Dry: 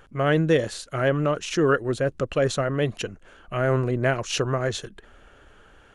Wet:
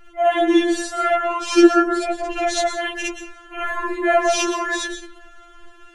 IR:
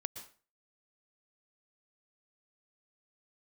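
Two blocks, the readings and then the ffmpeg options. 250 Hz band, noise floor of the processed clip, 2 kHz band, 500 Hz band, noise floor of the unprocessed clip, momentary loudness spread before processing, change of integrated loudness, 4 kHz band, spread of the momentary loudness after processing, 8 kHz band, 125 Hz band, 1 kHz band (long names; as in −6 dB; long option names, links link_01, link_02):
+8.0 dB, −46 dBFS, +5.5 dB, +3.0 dB, −53 dBFS, 10 LU, +5.0 dB, +5.5 dB, 15 LU, +7.5 dB, below −30 dB, +9.5 dB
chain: -filter_complex "[0:a]asplit=2[link_01][link_02];[1:a]atrim=start_sample=2205,adelay=58[link_03];[link_02][link_03]afir=irnorm=-1:irlink=0,volume=6dB[link_04];[link_01][link_04]amix=inputs=2:normalize=0,afftfilt=real='re*4*eq(mod(b,16),0)':imag='im*4*eq(mod(b,16),0)':win_size=2048:overlap=0.75,volume=3dB"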